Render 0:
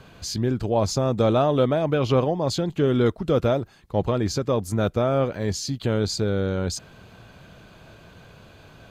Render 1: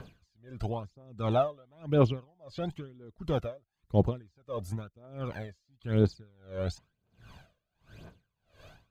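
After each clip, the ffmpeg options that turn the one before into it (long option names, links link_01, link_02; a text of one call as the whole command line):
ffmpeg -i in.wav -filter_complex "[0:a]acrossover=split=3400[link_01][link_02];[link_02]acompressor=threshold=-45dB:ratio=4:attack=1:release=60[link_03];[link_01][link_03]amix=inputs=2:normalize=0,aphaser=in_gain=1:out_gain=1:delay=1.9:decay=0.64:speed=0.99:type=triangular,aeval=exprs='val(0)*pow(10,-34*(0.5-0.5*cos(2*PI*1.5*n/s))/20)':channel_layout=same,volume=-6dB" out.wav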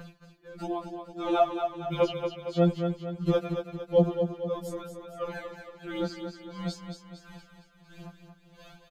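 ffmpeg -i in.wav -filter_complex "[0:a]asplit=2[link_01][link_02];[link_02]aecho=0:1:229|458|687|916|1145|1374:0.447|0.223|0.112|0.0558|0.0279|0.014[link_03];[link_01][link_03]amix=inputs=2:normalize=0,afftfilt=real='re*2.83*eq(mod(b,8),0)':imag='im*2.83*eq(mod(b,8),0)':win_size=2048:overlap=0.75,volume=6.5dB" out.wav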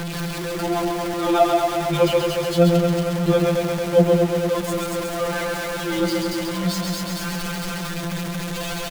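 ffmpeg -i in.wav -af "aeval=exprs='val(0)+0.5*0.0335*sgn(val(0))':channel_layout=same,aecho=1:1:134:0.631,volume=5.5dB" out.wav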